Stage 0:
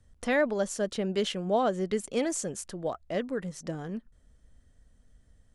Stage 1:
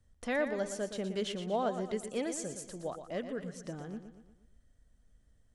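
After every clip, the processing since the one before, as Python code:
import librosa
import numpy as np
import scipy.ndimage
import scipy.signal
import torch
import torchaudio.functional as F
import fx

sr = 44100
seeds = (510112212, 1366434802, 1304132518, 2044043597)

y = fx.echo_feedback(x, sr, ms=118, feedback_pct=49, wet_db=-9.5)
y = y * librosa.db_to_amplitude(-6.5)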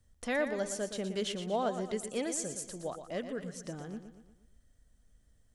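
y = fx.high_shelf(x, sr, hz=4200.0, db=6.0)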